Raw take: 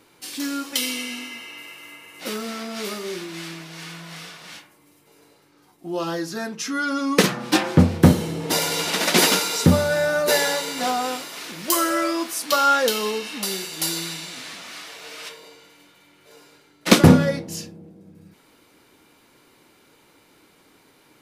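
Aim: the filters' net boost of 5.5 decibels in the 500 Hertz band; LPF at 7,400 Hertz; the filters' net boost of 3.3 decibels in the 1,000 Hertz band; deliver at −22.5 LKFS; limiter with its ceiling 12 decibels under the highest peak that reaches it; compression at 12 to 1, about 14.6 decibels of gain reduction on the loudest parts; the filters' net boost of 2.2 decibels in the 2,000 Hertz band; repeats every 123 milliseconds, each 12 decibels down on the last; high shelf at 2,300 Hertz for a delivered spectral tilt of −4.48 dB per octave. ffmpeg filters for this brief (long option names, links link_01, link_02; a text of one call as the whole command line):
ffmpeg -i in.wav -af "lowpass=7400,equalizer=frequency=500:width_type=o:gain=6,equalizer=frequency=1000:width_type=o:gain=3,equalizer=frequency=2000:width_type=o:gain=5.5,highshelf=frequency=2300:gain=-8,acompressor=threshold=-21dB:ratio=12,alimiter=limit=-20dB:level=0:latency=1,aecho=1:1:123|246|369:0.251|0.0628|0.0157,volume=7.5dB" out.wav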